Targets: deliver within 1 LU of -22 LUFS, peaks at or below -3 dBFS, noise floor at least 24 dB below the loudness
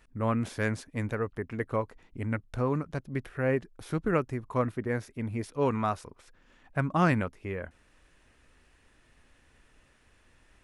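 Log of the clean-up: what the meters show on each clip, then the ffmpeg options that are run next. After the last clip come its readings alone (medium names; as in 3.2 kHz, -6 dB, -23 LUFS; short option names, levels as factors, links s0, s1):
loudness -31.5 LUFS; peak level -11.5 dBFS; loudness target -22.0 LUFS
-> -af "volume=2.99,alimiter=limit=0.708:level=0:latency=1"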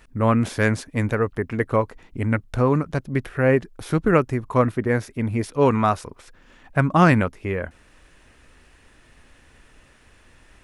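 loudness -22.0 LUFS; peak level -3.0 dBFS; noise floor -54 dBFS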